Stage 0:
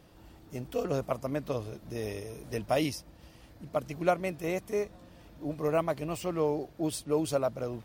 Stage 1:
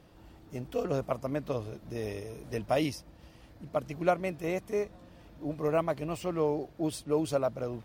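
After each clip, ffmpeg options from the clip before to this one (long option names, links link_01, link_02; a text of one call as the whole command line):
ffmpeg -i in.wav -af "highshelf=frequency=5100:gain=-5.5" out.wav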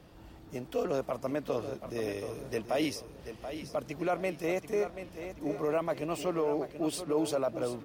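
ffmpeg -i in.wav -filter_complex "[0:a]acrossover=split=230|1200|2300[link_01][link_02][link_03][link_04];[link_01]acompressor=threshold=-50dB:ratio=5[link_05];[link_05][link_02][link_03][link_04]amix=inputs=4:normalize=0,alimiter=level_in=0.5dB:limit=-24dB:level=0:latency=1:release=11,volume=-0.5dB,aecho=1:1:733|1466|2199|2932:0.316|0.123|0.0481|0.0188,volume=2.5dB" out.wav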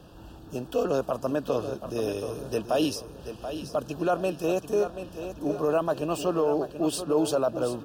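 ffmpeg -i in.wav -af "asuperstop=centerf=2100:order=8:qfactor=2.7,volume=5.5dB" out.wav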